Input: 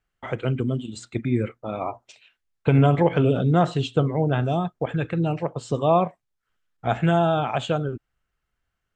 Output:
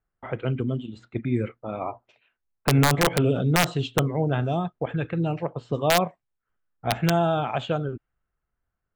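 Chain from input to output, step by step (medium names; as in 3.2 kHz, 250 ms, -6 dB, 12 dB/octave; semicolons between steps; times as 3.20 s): level-controlled noise filter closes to 1.4 kHz, open at -15 dBFS; integer overflow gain 8.5 dB; trim -2 dB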